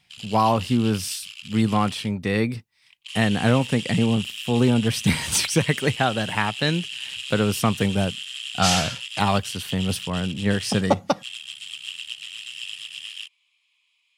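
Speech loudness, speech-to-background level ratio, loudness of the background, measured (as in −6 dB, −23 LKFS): −23.0 LKFS, 10.0 dB, −33.0 LKFS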